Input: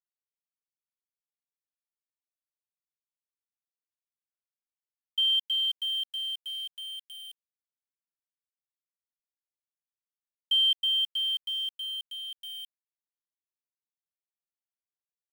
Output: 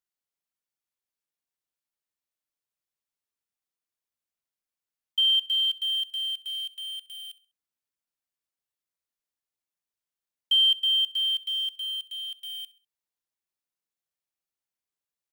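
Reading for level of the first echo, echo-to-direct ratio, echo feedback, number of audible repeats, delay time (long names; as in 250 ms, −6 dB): −19.0 dB, −18.5 dB, 35%, 2, 66 ms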